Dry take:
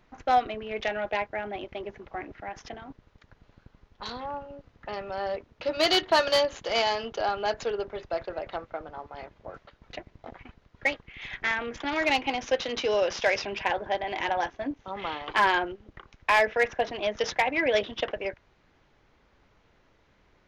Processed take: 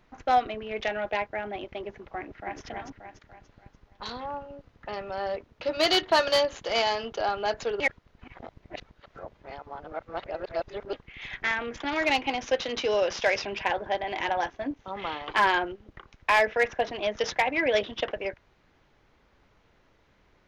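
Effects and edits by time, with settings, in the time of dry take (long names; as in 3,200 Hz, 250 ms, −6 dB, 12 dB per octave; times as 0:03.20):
0:02.17–0:02.60: delay throw 290 ms, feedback 45%, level −2 dB
0:07.80–0:10.93: reverse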